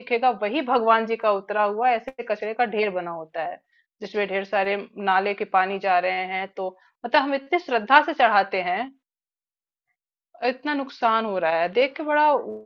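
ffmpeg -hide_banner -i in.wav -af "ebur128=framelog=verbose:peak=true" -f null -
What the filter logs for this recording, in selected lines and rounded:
Integrated loudness:
  I:         -22.8 LUFS
  Threshold: -33.2 LUFS
Loudness range:
  LRA:         4.1 LU
  Threshold: -43.9 LUFS
  LRA low:   -26.0 LUFS
  LRA high:  -21.9 LUFS
True peak:
  Peak:       -2.1 dBFS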